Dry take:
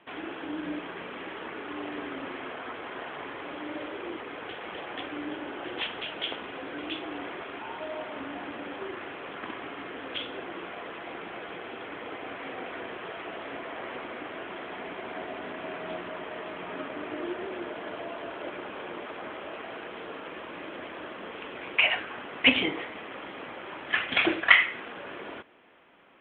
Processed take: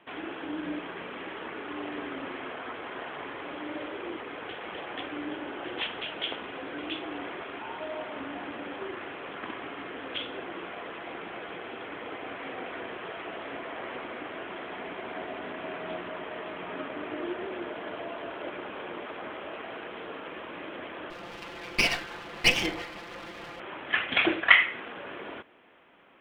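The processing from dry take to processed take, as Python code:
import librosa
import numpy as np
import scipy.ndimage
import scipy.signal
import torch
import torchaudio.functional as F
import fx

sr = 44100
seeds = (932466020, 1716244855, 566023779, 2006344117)

y = fx.lower_of_two(x, sr, delay_ms=5.8, at=(21.1, 23.6))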